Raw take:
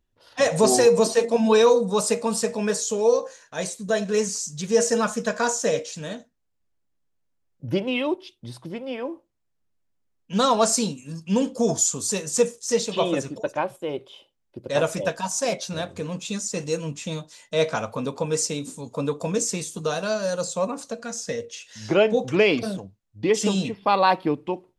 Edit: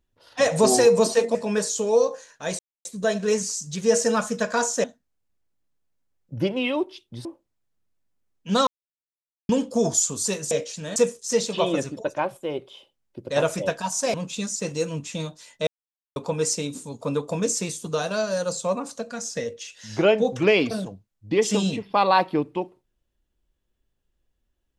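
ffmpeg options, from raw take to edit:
-filter_complex "[0:a]asplit=12[a][b][c][d][e][f][g][h][i][j][k][l];[a]atrim=end=1.352[m];[b]atrim=start=2.468:end=3.71,asetpts=PTS-STARTPTS,afade=t=out:st=1.238:d=0.004:c=hsin,apad=pad_dur=0.26[n];[c]atrim=start=3.71:end=5.702,asetpts=PTS-STARTPTS,afade=t=in:d=0.004:c=hsin[o];[d]atrim=start=6.148:end=8.562[p];[e]atrim=start=9.088:end=10.51,asetpts=PTS-STARTPTS,afade=t=out:st=1.418:d=0.004:c=hsin[q];[f]atrim=start=10.51:end=11.33,asetpts=PTS-STARTPTS,volume=0[r];[g]atrim=start=11.33:end=12.352,asetpts=PTS-STARTPTS,afade=t=in:d=0.004:c=hsin[s];[h]atrim=start=5.698:end=6.152[t];[i]atrim=start=12.348:end=15.532[u];[j]atrim=start=16.058:end=17.59,asetpts=PTS-STARTPTS,afade=t=out:st=1.528:d=0.004:c=hsin[v];[k]atrim=start=17.59:end=18.08,asetpts=PTS-STARTPTS,volume=0[w];[l]atrim=start=18.08,asetpts=PTS-STARTPTS,afade=t=in:d=0.004:c=hsin[x];[n][o]concat=n=2:v=0:a=1[y];[m][y]acrossfade=d=0.004:c1=hsin:c2=hsin[z];[z][p]acrossfade=d=0.004:c1=hsin:c2=hsin[aa];[q][r][s]concat=n=3:v=0:a=1[ab];[aa][ab]acrossfade=d=0.004:c1=hsin:c2=hsin[ac];[ac][t]acrossfade=d=0.004:c1=hsin:c2=hsin[ad];[ad][u]acrossfade=d=0.004:c1=hsin:c2=hsin[ae];[v][w][x]concat=n=3:v=0:a=1[af];[ae][af]acrossfade=d=0.004:c1=hsin:c2=hsin"

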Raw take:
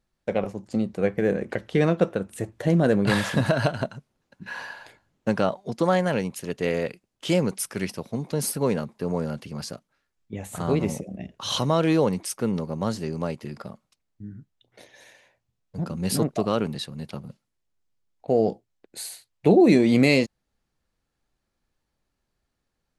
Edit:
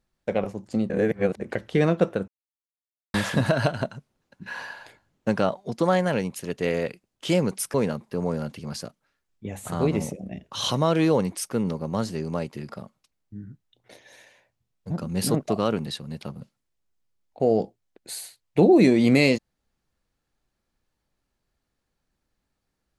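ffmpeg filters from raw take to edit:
-filter_complex "[0:a]asplit=6[a][b][c][d][e][f];[a]atrim=end=0.902[g];[b]atrim=start=0.898:end=1.402,asetpts=PTS-STARTPTS,areverse[h];[c]atrim=start=1.398:end=2.28,asetpts=PTS-STARTPTS,afade=t=out:st=0.878:d=0.004:c=hsin[i];[d]atrim=start=2.28:end=3.14,asetpts=PTS-STARTPTS,volume=0[j];[e]atrim=start=3.14:end=7.742,asetpts=PTS-STARTPTS,afade=t=in:d=0.004:c=hsin[k];[f]atrim=start=8.618[l];[g][h]acrossfade=d=0.004:c1=hsin:c2=hsin[m];[i][j][k]concat=n=3:v=0:a=1[n];[m][n]acrossfade=d=0.004:c1=hsin:c2=hsin[o];[o][l]acrossfade=d=0.004:c1=hsin:c2=hsin"

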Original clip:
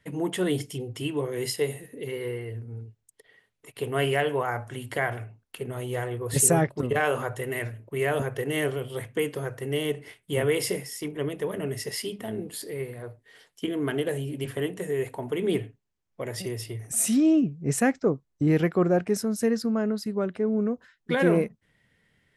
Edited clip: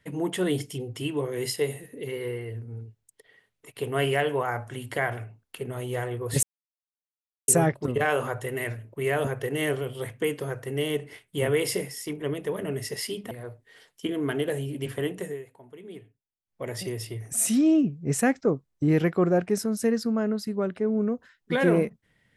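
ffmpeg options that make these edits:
-filter_complex "[0:a]asplit=5[a][b][c][d][e];[a]atrim=end=6.43,asetpts=PTS-STARTPTS,afade=t=out:st=6.426:d=0.004:c=hsin,apad=pad_dur=1.05[f];[b]atrim=start=6.43:end=12.262,asetpts=PTS-STARTPTS,afade=t=in:d=0.004:c=hsin[g];[c]atrim=start=12.898:end=15.02,asetpts=PTS-STARTPTS,afade=t=out:st=1.902:d=0.22:silence=0.141254[h];[d]atrim=start=15.02:end=16.02,asetpts=PTS-STARTPTS,volume=-17dB[i];[e]atrim=start=16.02,asetpts=PTS-STARTPTS,afade=t=in:d=0.22:silence=0.141254[j];[f][g]concat=n=2:v=0:a=1[k];[h][i][j]concat=n=3:v=0:a=1[l];[k][l]acrossfade=d=0.004:c1=hsin:c2=hsin"

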